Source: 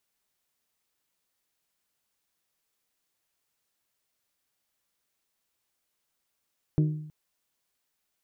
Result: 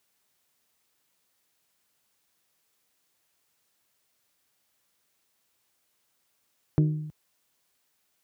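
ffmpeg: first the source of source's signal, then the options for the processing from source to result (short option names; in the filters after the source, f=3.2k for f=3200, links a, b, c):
-f lavfi -i "aevalsrc='0.126*pow(10,-3*t/0.77)*sin(2*PI*153*t)+0.0562*pow(10,-3*t/0.474)*sin(2*PI*306*t)+0.0251*pow(10,-3*t/0.417)*sin(2*PI*367.2*t)+0.0112*pow(10,-3*t/0.357)*sin(2*PI*459*t)+0.00501*pow(10,-3*t/0.292)*sin(2*PI*612*t)':d=0.32:s=44100"
-filter_complex "[0:a]highpass=60,asplit=2[a][b];[b]acompressor=threshold=-35dB:ratio=6,volume=1dB[c];[a][c]amix=inputs=2:normalize=0"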